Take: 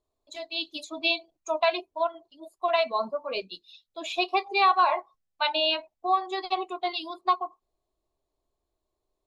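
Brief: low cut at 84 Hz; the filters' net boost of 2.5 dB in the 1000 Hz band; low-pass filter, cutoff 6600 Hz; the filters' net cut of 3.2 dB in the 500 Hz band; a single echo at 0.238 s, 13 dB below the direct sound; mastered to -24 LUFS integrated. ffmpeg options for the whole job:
-af "highpass=84,lowpass=6.6k,equalizer=f=500:t=o:g=-8.5,equalizer=f=1k:t=o:g=5.5,aecho=1:1:238:0.224,volume=2dB"

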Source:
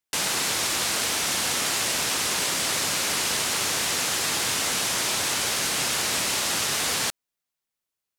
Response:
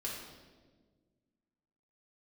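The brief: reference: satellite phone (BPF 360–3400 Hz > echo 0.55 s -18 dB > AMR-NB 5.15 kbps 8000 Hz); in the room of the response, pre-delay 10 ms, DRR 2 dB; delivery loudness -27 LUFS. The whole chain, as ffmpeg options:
-filter_complex "[0:a]asplit=2[a][b];[1:a]atrim=start_sample=2205,adelay=10[c];[b][c]afir=irnorm=-1:irlink=0,volume=-3dB[d];[a][d]amix=inputs=2:normalize=0,highpass=360,lowpass=3.4k,aecho=1:1:550:0.126,volume=6dB" -ar 8000 -c:a libopencore_amrnb -b:a 5150

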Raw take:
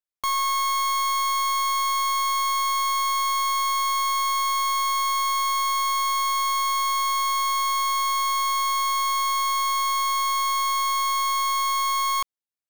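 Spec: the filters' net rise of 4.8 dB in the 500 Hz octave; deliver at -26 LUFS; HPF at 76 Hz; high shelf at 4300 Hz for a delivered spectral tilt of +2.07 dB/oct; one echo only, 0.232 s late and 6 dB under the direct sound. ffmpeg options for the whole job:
-af "highpass=76,equalizer=f=500:t=o:g=5.5,highshelf=f=4.3k:g=-4,aecho=1:1:232:0.501,volume=-5.5dB"

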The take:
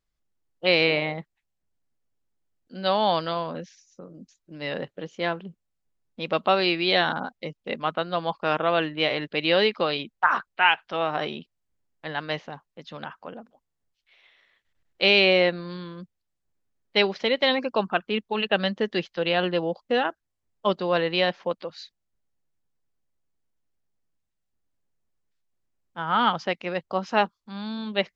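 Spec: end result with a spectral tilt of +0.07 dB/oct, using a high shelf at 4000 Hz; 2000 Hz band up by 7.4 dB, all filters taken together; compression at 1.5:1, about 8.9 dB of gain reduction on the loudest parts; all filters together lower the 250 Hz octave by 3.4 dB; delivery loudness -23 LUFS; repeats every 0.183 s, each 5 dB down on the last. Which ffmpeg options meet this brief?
-af "equalizer=f=250:t=o:g=-5.5,equalizer=f=2k:t=o:g=8,highshelf=f=4k:g=6,acompressor=threshold=-34dB:ratio=1.5,aecho=1:1:183|366|549|732|915|1098|1281:0.562|0.315|0.176|0.0988|0.0553|0.031|0.0173,volume=3.5dB"

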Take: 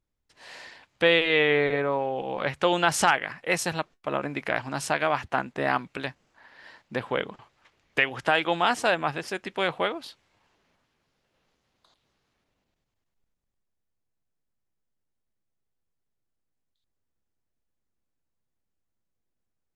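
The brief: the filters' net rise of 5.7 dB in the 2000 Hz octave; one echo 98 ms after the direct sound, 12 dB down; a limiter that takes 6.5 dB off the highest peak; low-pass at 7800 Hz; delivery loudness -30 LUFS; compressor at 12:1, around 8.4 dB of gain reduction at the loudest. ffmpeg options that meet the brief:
-af "lowpass=7.8k,equalizer=f=2k:t=o:g=7,acompressor=threshold=-20dB:ratio=12,alimiter=limit=-13dB:level=0:latency=1,aecho=1:1:98:0.251,volume=-1.5dB"

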